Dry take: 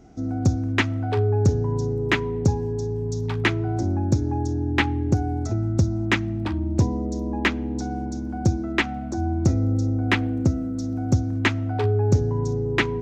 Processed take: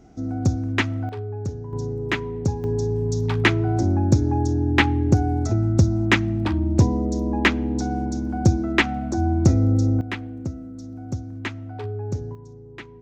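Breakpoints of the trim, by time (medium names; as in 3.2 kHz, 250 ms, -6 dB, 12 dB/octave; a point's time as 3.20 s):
-0.5 dB
from 1.09 s -10 dB
from 1.73 s -3 dB
from 2.64 s +3.5 dB
from 10.01 s -9 dB
from 12.35 s -18 dB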